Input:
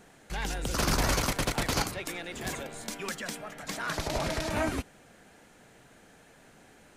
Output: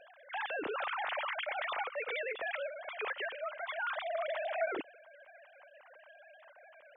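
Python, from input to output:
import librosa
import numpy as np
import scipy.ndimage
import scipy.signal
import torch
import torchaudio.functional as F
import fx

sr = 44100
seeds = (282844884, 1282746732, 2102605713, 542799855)

p1 = fx.sine_speech(x, sr)
p2 = fx.over_compress(p1, sr, threshold_db=-34.0, ratio=-0.5)
p3 = p1 + (p2 * librosa.db_to_amplitude(-2.0))
y = p3 * librosa.db_to_amplitude(-9.0)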